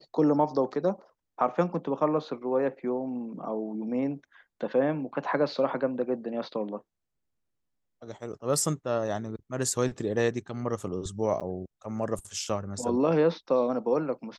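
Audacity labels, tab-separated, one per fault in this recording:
11.400000	11.410000	gap 7.7 ms

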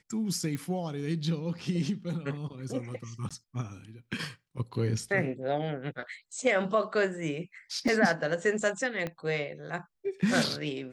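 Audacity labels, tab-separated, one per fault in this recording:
0.550000	0.550000	pop -22 dBFS
3.290000	3.310000	gap 16 ms
7.880000	7.880000	gap 2.3 ms
9.070000	9.070000	pop -21 dBFS

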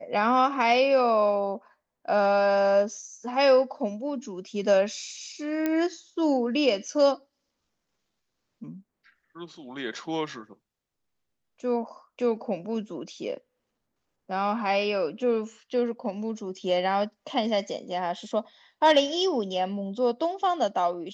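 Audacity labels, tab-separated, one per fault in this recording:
5.660000	5.660000	pop -14 dBFS

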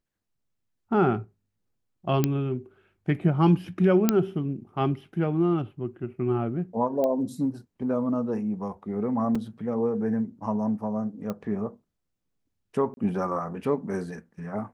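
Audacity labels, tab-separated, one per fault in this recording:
2.240000	2.240000	pop -9 dBFS
4.090000	4.090000	pop -6 dBFS
7.040000	7.040000	pop -16 dBFS
9.350000	9.350000	gap 4.2 ms
11.300000	11.300000	pop -19 dBFS
12.940000	12.970000	gap 31 ms

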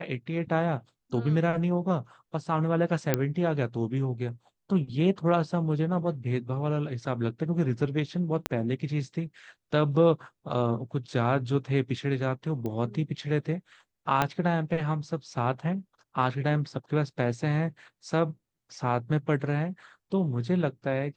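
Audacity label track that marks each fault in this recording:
3.140000	3.140000	pop -9 dBFS
8.460000	8.460000	pop -11 dBFS
12.660000	12.660000	pop -22 dBFS
14.220000	14.220000	pop -10 dBFS

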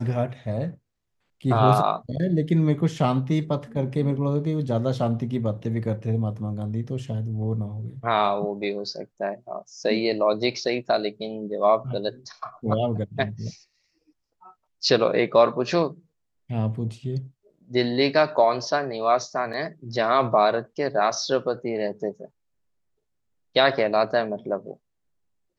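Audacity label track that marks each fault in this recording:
19.530000	19.540000	gap 6.2 ms

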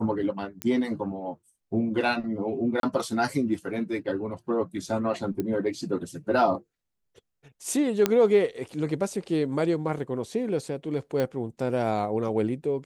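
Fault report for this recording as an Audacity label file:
0.620000	0.620000	pop -14 dBFS
2.800000	2.830000	gap 32 ms
5.400000	5.400000	pop -17 dBFS
8.060000	8.060000	pop -7 dBFS
11.200000	11.200000	pop -15 dBFS

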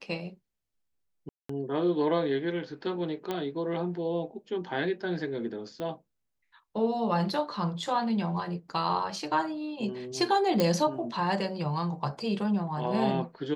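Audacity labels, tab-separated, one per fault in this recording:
1.290000	1.490000	gap 0.204 s
3.310000	3.310000	pop -18 dBFS
5.800000	5.800000	pop -23 dBFS
10.600000	10.600000	pop -11 dBFS

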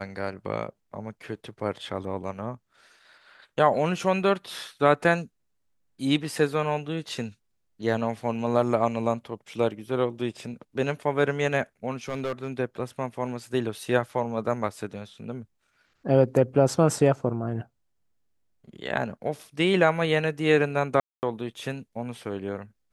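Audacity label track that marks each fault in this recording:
12.080000	12.500000	clipped -24.5 dBFS
21.000000	21.230000	gap 0.229 s

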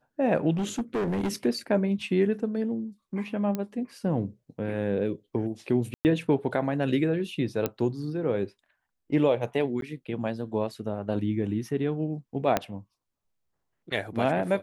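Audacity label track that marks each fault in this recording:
0.530000	1.350000	clipped -24.5 dBFS
3.550000	3.550000	pop -17 dBFS
5.940000	6.050000	gap 0.109 s
7.660000	7.660000	pop -12 dBFS
9.810000	9.820000	gap 12 ms
12.570000	12.570000	pop -9 dBFS

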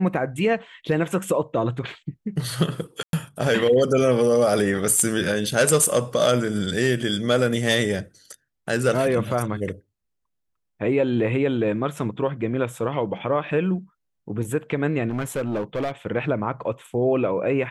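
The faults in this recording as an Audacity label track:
3.030000	3.130000	gap 0.102 s
15.090000	15.910000	clipped -21.5 dBFS

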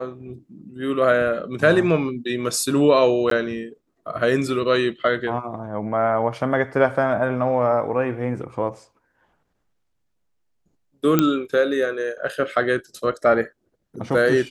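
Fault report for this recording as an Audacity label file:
3.300000	3.310000	gap 13 ms
11.190000	11.190000	pop -3 dBFS

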